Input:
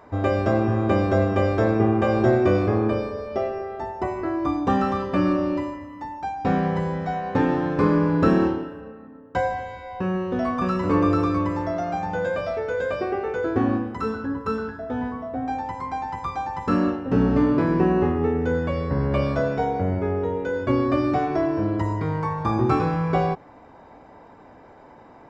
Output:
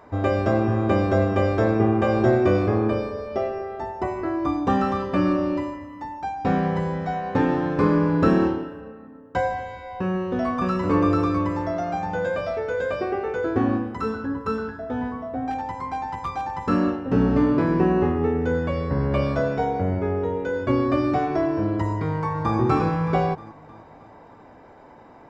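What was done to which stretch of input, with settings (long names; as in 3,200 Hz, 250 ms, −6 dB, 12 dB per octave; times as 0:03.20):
0:15.50–0:16.55: hard clipping −22 dBFS
0:22.03–0:22.58: delay throw 310 ms, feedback 55%, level −9.5 dB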